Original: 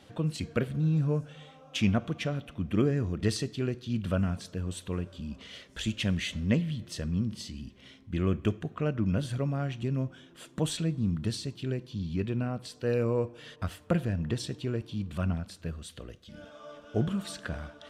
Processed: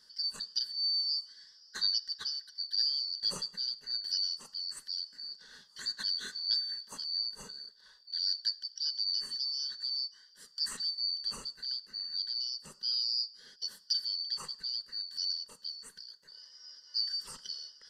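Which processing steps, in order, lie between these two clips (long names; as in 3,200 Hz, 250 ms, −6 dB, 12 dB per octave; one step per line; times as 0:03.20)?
band-splitting scrambler in four parts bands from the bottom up 4321
phaser with its sweep stopped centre 470 Hz, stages 8
level −2.5 dB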